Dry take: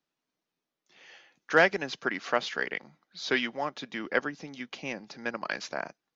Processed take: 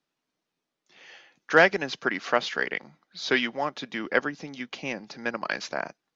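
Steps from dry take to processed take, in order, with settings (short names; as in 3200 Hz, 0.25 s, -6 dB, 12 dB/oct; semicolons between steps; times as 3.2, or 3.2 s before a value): LPF 8400 Hz; gain +3.5 dB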